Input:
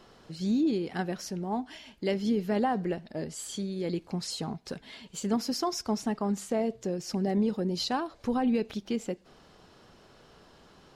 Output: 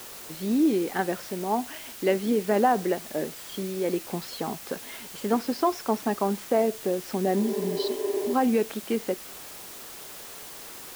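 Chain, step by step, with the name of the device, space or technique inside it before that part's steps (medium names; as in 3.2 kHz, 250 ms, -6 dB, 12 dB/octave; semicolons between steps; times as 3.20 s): wax cylinder (band-pass 300–2400 Hz; wow and flutter; white noise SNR 15 dB); spectral replace 7.44–8.31 s, 240–3000 Hz before; trim +7.5 dB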